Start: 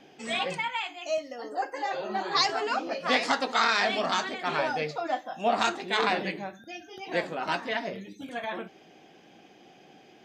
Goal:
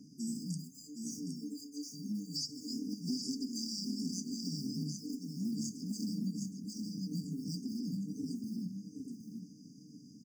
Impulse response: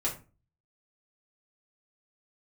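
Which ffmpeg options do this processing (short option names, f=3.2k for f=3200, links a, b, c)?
-filter_complex "[0:a]lowpass=8.3k,bandreject=f=275.7:t=h:w=4,bandreject=f=551.4:t=h:w=4,bandreject=f=827.1:t=h:w=4,bandreject=f=1.1028k:t=h:w=4,bandreject=f=1.3785k:t=h:w=4,bandreject=f=1.6542k:t=h:w=4,bandreject=f=1.9299k:t=h:w=4,bandreject=f=2.2056k:t=h:w=4,bandreject=f=2.4813k:t=h:w=4,bandreject=f=2.757k:t=h:w=4,bandreject=f=3.0327k:t=h:w=4,bandreject=f=3.3084k:t=h:w=4,bandreject=f=3.5841k:t=h:w=4,asplit=2[a][b];[b]acrusher=bits=5:mode=log:mix=0:aa=0.000001,volume=-11.5dB[c];[a][c]amix=inputs=2:normalize=0,highpass=120,asplit=2[d][e];[e]aecho=0:1:765:0.422[f];[d][f]amix=inputs=2:normalize=0,afftfilt=real='re*(1-between(b*sr/4096,310,4600))':imag='im*(1-between(b*sr/4096,310,4600))':win_size=4096:overlap=0.75,acompressor=threshold=-40dB:ratio=3,equalizer=f=570:w=0.94:g=12,asplit=2[g][h];[h]asetrate=66075,aresample=44100,atempo=0.66742,volume=-17dB[i];[g][i]amix=inputs=2:normalize=0,bass=f=250:g=11,treble=f=4k:g=8,volume=-4.5dB"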